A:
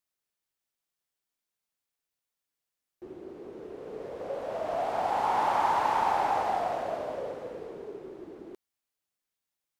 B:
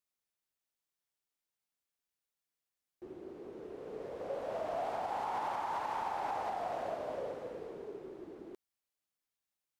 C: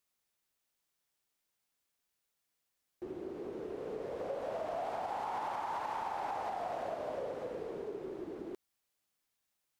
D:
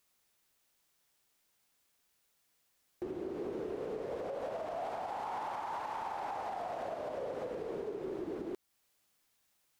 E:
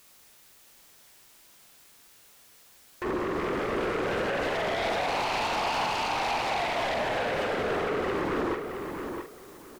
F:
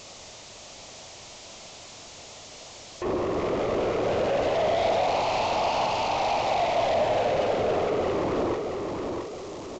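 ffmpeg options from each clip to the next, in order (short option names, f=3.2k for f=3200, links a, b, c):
-af "alimiter=limit=-24dB:level=0:latency=1:release=203,volume=-4dB"
-af "acompressor=threshold=-45dB:ratio=2.5,volume=6.5dB"
-af "alimiter=level_in=15dB:limit=-24dB:level=0:latency=1:release=302,volume=-15dB,volume=8dB"
-filter_complex "[0:a]asplit=2[a][b];[b]aeval=exprs='0.0299*sin(PI/2*3.98*val(0)/0.0299)':c=same,volume=-3.5dB[c];[a][c]amix=inputs=2:normalize=0,asplit=2[d][e];[e]adelay=45,volume=-7dB[f];[d][f]amix=inputs=2:normalize=0,asplit=2[g][h];[h]adelay=668,lowpass=f=4.3k:p=1,volume=-6dB,asplit=2[i][j];[j]adelay=668,lowpass=f=4.3k:p=1,volume=0.23,asplit=2[k][l];[l]adelay=668,lowpass=f=4.3k:p=1,volume=0.23[m];[g][i][k][m]amix=inputs=4:normalize=0,volume=4dB"
-af "aeval=exprs='val(0)+0.5*0.02*sgn(val(0))':c=same,equalizer=f=100:t=o:w=0.67:g=6,equalizer=f=630:t=o:w=0.67:g=8,equalizer=f=1.6k:t=o:w=0.67:g=-9,aresample=16000,aresample=44100,volume=-1dB"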